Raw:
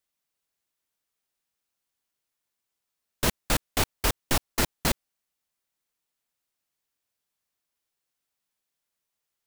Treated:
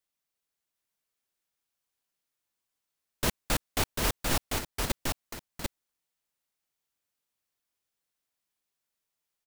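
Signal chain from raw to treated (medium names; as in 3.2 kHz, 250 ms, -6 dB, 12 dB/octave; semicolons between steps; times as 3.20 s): 4.47–4.90 s: compression 4:1, threshold -34 dBFS, peak gain reduction 12 dB; delay 744 ms -3.5 dB; trim -3.5 dB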